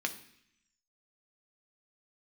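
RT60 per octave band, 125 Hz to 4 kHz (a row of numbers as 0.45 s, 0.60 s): 0.90 s, 0.95 s, 0.65 s, 0.70 s, 0.95 s, 0.90 s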